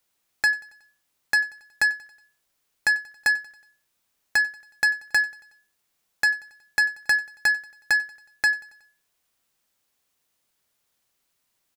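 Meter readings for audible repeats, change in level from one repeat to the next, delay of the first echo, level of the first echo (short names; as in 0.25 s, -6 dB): 3, -5.0 dB, 92 ms, -21.5 dB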